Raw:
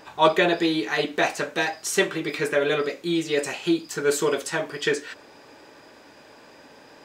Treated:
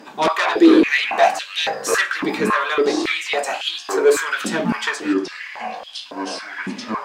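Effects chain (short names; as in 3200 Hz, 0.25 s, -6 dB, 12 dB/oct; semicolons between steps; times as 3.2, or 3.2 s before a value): echoes that change speed 0.102 s, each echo -7 st, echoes 3, each echo -6 dB; added harmonics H 5 -8 dB, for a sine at -5 dBFS; stepped high-pass 3.6 Hz 230–3200 Hz; gain -6.5 dB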